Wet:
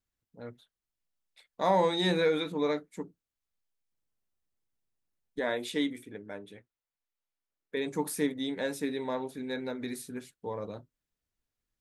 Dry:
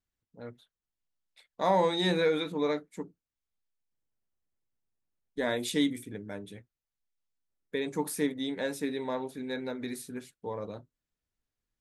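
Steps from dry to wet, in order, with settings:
0:05.39–0:07.77: bass and treble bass −9 dB, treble −8 dB

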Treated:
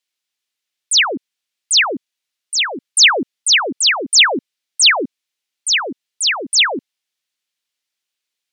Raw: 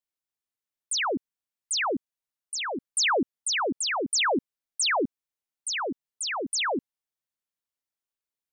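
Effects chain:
meter weighting curve D
level +5.5 dB

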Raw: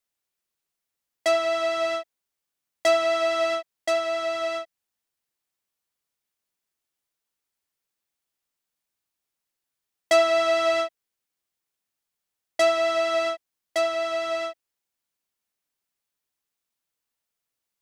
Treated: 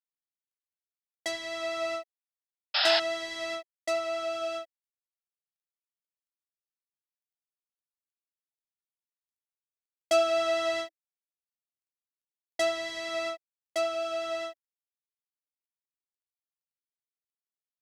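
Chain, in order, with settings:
sound drawn into the spectrogram noise, 0:02.74–0:03.00, 560–5,400 Hz −20 dBFS
bit-depth reduction 12 bits, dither none
phaser whose notches keep moving one way rising 0.52 Hz
level −4 dB

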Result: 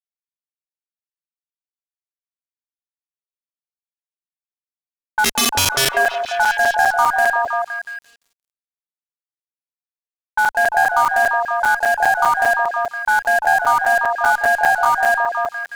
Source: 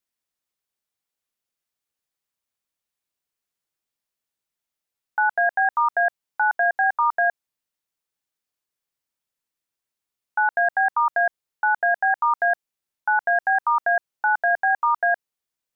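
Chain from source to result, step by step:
in parallel at 0 dB: log-companded quantiser 4 bits
0:05.24–0:05.89: on the sum: wrap-around overflow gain 12 dB
harmonic generator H 6 −28 dB, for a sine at −6.5 dBFS
low-pass that shuts in the quiet parts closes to 550 Hz, open at −16 dBFS
brickwall limiter −15 dBFS, peak gain reduction 9 dB
on a send: echo through a band-pass that steps 172 ms, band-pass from 490 Hz, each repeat 0.7 octaves, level −1 dB
on the sum: dead-zone distortion −53.5 dBFS
regular buffer underruns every 0.20 s, samples 256, zero
level +7 dB

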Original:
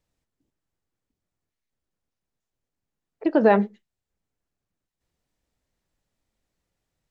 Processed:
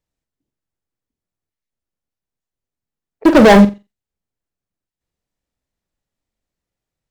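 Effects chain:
0:03.25–0:03.65: leveller curve on the samples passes 5
noise gate −48 dBFS, range −6 dB
on a send: flutter between parallel walls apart 7.6 metres, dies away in 0.24 s
on the sum: level +2 dB

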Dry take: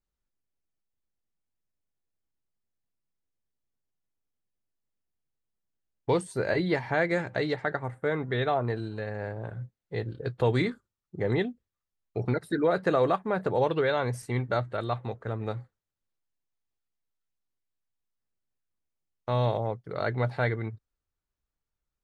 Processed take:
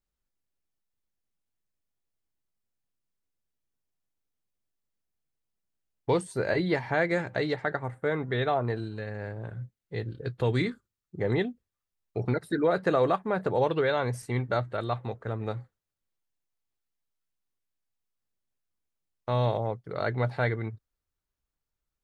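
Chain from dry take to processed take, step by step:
0:08.84–0:11.20: parametric band 740 Hz −5 dB 1.5 octaves

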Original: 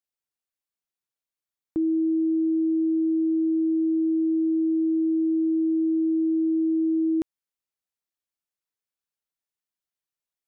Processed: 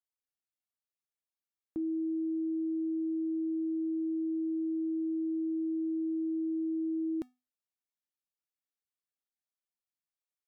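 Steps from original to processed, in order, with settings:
tuned comb filter 250 Hz, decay 0.26 s, harmonics odd, mix 70%

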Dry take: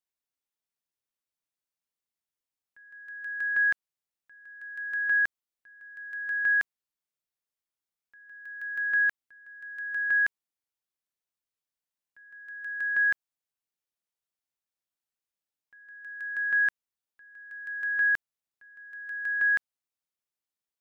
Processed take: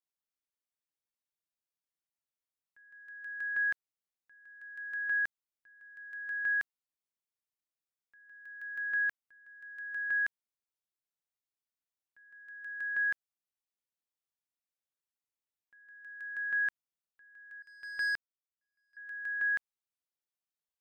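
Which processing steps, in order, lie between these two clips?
0:17.62–0:18.97: power curve on the samples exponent 2
level −6.5 dB

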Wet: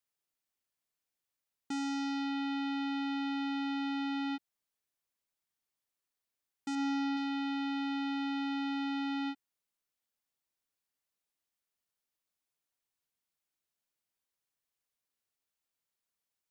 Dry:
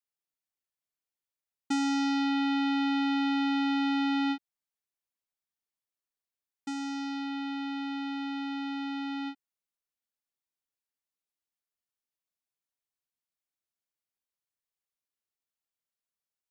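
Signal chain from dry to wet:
0:06.75–0:07.17: high-frequency loss of the air 130 metres
brickwall limiter −33.5 dBFS, peak gain reduction 12 dB
level +3 dB

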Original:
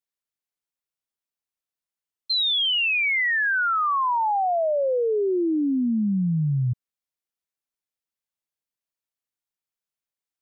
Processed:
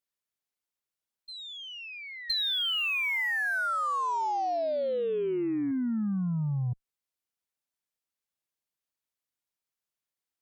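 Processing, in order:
backwards echo 1,017 ms −19.5 dB
harmonic generator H 3 −43 dB, 6 −38 dB, 8 −27 dB, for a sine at −18 dBFS
downward compressor, threshold −28 dBFS, peak gain reduction 7 dB

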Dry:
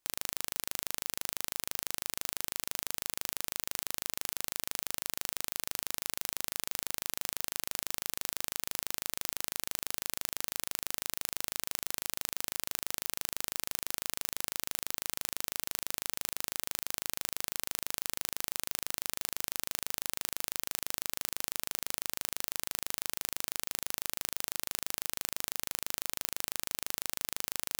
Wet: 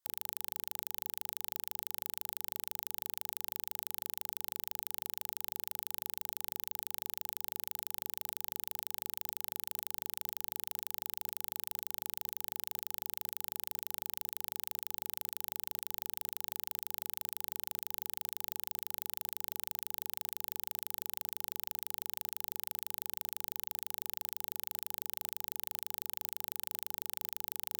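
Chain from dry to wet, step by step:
in parallel at −10 dB: fuzz pedal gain 42 dB, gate −51 dBFS
on the sum: mains-hum notches 60/120/180/240/300/360/420/480 Hz
brickwall limiter −14.5 dBFS, peak gain reduction 10.5 dB
thirty-one-band graphic EQ 100 Hz +10 dB, 2,500 Hz −9 dB, 16,000 Hz +7 dB
leveller curve on the samples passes 3
low-shelf EQ 200 Hz −10.5 dB
notch filter 850 Hz, Q 14

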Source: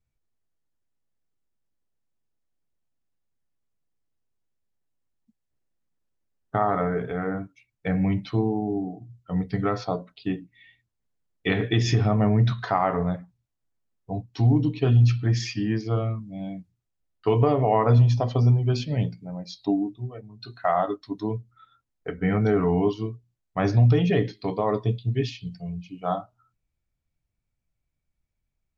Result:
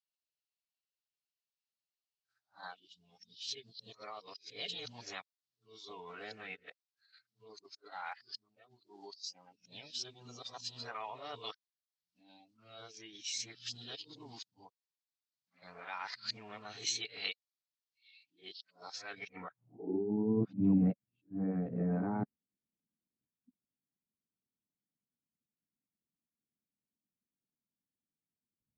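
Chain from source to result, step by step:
played backwards from end to start
formants moved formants +3 semitones
band-pass filter sweep 4,400 Hz → 220 Hz, 0:19.10–0:20.04

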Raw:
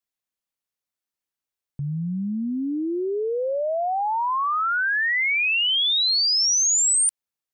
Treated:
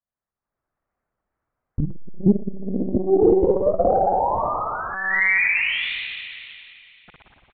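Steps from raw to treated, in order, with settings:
low-pass filter 1,500 Hz 24 dB per octave
treble cut that deepens with the level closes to 330 Hz, closed at −24 dBFS
dynamic equaliser 290 Hz, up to −4 dB, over −43 dBFS, Q 2.6
automatic gain control gain up to 13 dB
far-end echo of a speakerphone 210 ms, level −19 dB
tape wow and flutter 51 cents
spring reverb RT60 2.6 s, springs 57 ms, chirp 45 ms, DRR −3.5 dB
one-pitch LPC vocoder at 8 kHz 190 Hz
saturating transformer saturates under 210 Hz
level +1 dB

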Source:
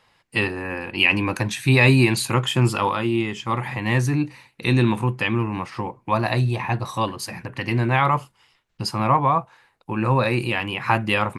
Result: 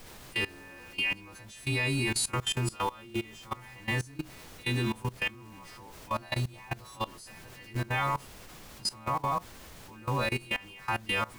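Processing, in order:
every partial snapped to a pitch grid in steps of 2 semitones
background noise pink −36 dBFS
output level in coarse steps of 20 dB
level −8.5 dB

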